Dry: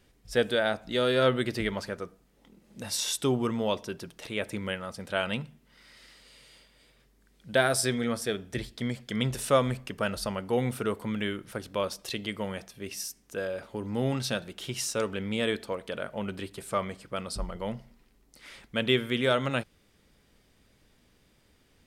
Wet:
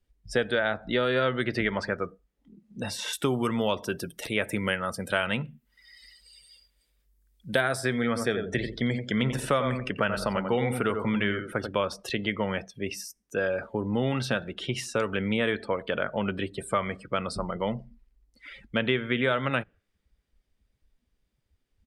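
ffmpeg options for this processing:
-filter_complex "[0:a]asettb=1/sr,asplit=3[a][b][c];[a]atrim=end=3.134[d];[b]atrim=start=3.13:end=7.61,asetpts=PTS-STARTPTS,afade=t=in:d=0.004:c=qsin,afade=t=out:st=4.476:d=0.004:c=qsin,aemphasis=mode=production:type=50fm[e];[c]atrim=start=7.606[f];[d][e]acrossfade=d=0.004:c1=hsin:c2=qsin[g];[g][f]acrossfade=d=0.004:c1=qsin:c2=hsin,asplit=3[h][i][j];[h]afade=t=out:st=8.15:d=0.02[k];[i]asplit=2[l][m];[m]adelay=88,lowpass=f=1.8k:p=1,volume=-6.5dB,asplit=2[n][o];[o]adelay=88,lowpass=f=1.8k:p=1,volume=0.25,asplit=2[p][q];[q]adelay=88,lowpass=f=1.8k:p=1,volume=0.25[r];[l][n][p][r]amix=inputs=4:normalize=0,afade=t=in:st=8.15:d=0.02,afade=t=out:st=11.7:d=0.02[s];[j]afade=t=in:st=11.7:d=0.02[t];[k][s][t]amix=inputs=3:normalize=0,afftdn=nr=24:nf=-47,adynamicequalizer=threshold=0.00891:dfrequency=1800:dqfactor=0.86:tfrequency=1800:tqfactor=0.86:attack=5:release=100:ratio=0.375:range=3:mode=boostabove:tftype=bell,acrossover=split=97|2400[u][v][w];[u]acompressor=threshold=-51dB:ratio=4[x];[v]acompressor=threshold=-30dB:ratio=4[y];[w]acompressor=threshold=-46dB:ratio=4[z];[x][y][z]amix=inputs=3:normalize=0,volume=6.5dB"

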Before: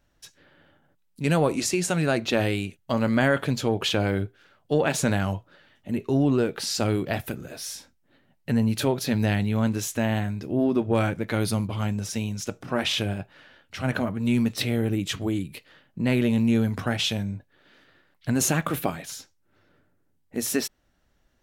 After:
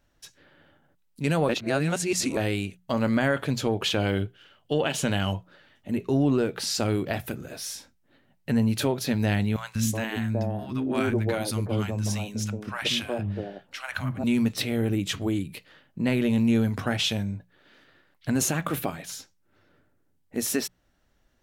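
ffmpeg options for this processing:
-filter_complex "[0:a]asettb=1/sr,asplit=3[a][b][c];[a]atrim=end=3.984[d];[b]atrim=start=3.98:end=5.33,asetpts=PTS-STARTPTS,afade=t=in:d=0.004:c=qsin,afade=t=out:st=1.346:d=0.004:c=qsin,equalizer=f=3k:w=6.1:g=14.5[e];[c]atrim=start=5.326[f];[d][e]acrossfade=d=0.004:c1=hsin:c2=qsin[g];[g][f]acrossfade=d=0.004:c1=qsin:c2=hsin,asettb=1/sr,asplit=3[h][i][j];[h]atrim=end=9.564[k];[i]atrim=start=9.56:end=14.24,asetpts=PTS-STARTPTS,afade=t=in:d=0.004:c=qsin,afade=t=out:st=4.676:d=0.004:c=qsin,acrossover=split=270|870[l][m][n];[l]adelay=190[o];[m]adelay=370[p];[o][p][n]amix=inputs=3:normalize=0,atrim=end_sample=206388[q];[j]atrim=start=14.236[r];[k][q]acrossfade=d=0.004:c1=hsin:c2=qsin[s];[s][r]acrossfade=d=0.004:c1=qsin:c2=hsin,asplit=3[t][u][v];[t]atrim=end=1.492[w];[u]atrim=start=1.488:end=2.372,asetpts=PTS-STARTPTS,areverse[x];[v]atrim=start=2.368[y];[w][x]acrossfade=d=0.004:c1=hsin:c2=hsin[z];[z][y]acrossfade=d=0.004:c1=hsin:c2=hsin,bandreject=f=60:t=h:w=6,bandreject=f=120:t=h:w=6,bandreject=f=180:t=h:w=6,alimiter=limit=-14dB:level=0:latency=1:release=276"

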